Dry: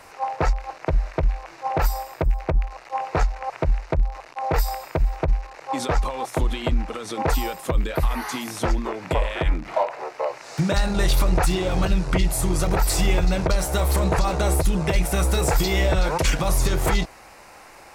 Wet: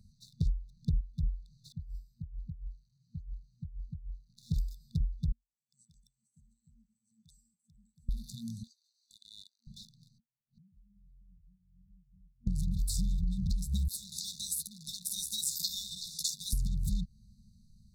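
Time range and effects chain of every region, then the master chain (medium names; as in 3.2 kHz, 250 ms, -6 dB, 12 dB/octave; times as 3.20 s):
0.41–1.01 s: bass shelf 260 Hz +7 dB + band-stop 1.9 kHz
1.72–4.30 s: amplifier tone stack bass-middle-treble 6-0-2 + compressor with a negative ratio -41 dBFS
5.32–8.09 s: gate -33 dBFS, range -8 dB + two resonant band-passes 3 kHz, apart 2.8 oct
8.63–9.67 s: steep high-pass 1.5 kHz + band-stop 2 kHz, Q 8.1
10.18–12.47 s: low-pass 1.8 kHz + inverted gate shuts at -28 dBFS, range -41 dB
13.88–16.53 s: resonant high-pass 880 Hz, resonance Q 5.4 + doubling 13 ms -8 dB
whole clip: local Wiener filter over 25 samples; FFT band-reject 230–3500 Hz; compression 6:1, threshold -28 dBFS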